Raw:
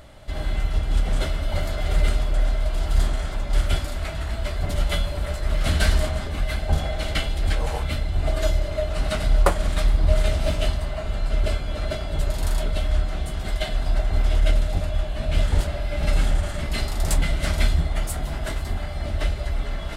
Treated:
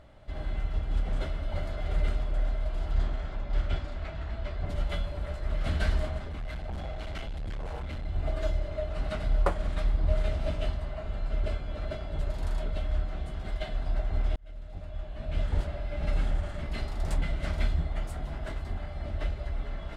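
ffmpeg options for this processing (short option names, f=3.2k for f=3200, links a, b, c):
-filter_complex "[0:a]asettb=1/sr,asplit=3[a][b][c];[a]atrim=end=2.914[d];[b]atrim=start=2.91:end=4.66,asetpts=PTS-STARTPTS,afade=t=in:d=0.004:c=qsin,afade=t=out:st=1.746:d=0.004:c=qsin,lowpass=6k[e];[c]atrim=start=4.656[f];[d][e]acrossfade=d=0.004:c1=hsin:c2=qsin[g];[g][f]acrossfade=d=0.004:c1=qsin:c2=hsin,asettb=1/sr,asplit=3[h][i][j];[h]atrim=end=6.184[k];[i]atrim=start=6.18:end=8.05,asetpts=PTS-STARTPTS,afade=t=in:d=0.004:c=qsin,afade=t=out:st=1.866:d=0.004:c=qsin,asoftclip=type=hard:threshold=-24.5dB[l];[j]atrim=start=8.046[m];[k][l]acrossfade=d=0.004:c1=hsin:c2=qsin[n];[n][m]acrossfade=d=0.004:c1=qsin:c2=hsin,asplit=2[o][p];[o]atrim=end=14.36,asetpts=PTS-STARTPTS,afade=t=out:st=14.356:d=0.004:c=hsin[q];[p]atrim=start=14.36,asetpts=PTS-STARTPTS,afade=t=in:d=1.2[r];[q][r]concat=n=2:v=0:a=1,aemphasis=mode=reproduction:type=75kf,volume=-7.5dB"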